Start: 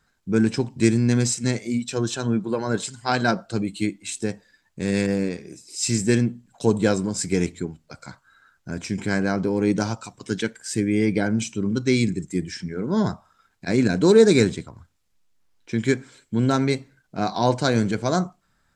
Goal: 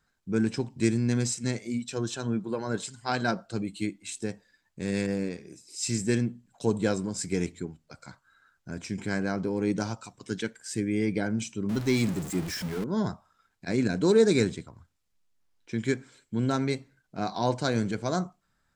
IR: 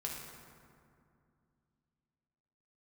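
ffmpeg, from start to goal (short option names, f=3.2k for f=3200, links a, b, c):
-filter_complex "[0:a]asettb=1/sr,asplit=3[a][b][c];[a]atrim=end=11.694[d];[b]atrim=start=11.69:end=12.84,asetpts=PTS-STARTPTS,afade=t=in:d=0.004:c=qsin,afade=t=out:st=1.146:d=0.004:c=qsin,aeval=exprs='val(0)+0.5*0.0501*sgn(val(0))':c=same[e];[c]atrim=start=12.836[f];[d][e]acrossfade=d=0.004:c1=hsin:c2=qsin[g];[g][f]acrossfade=d=0.004:c1=qsin:c2=hsin,volume=-6.5dB"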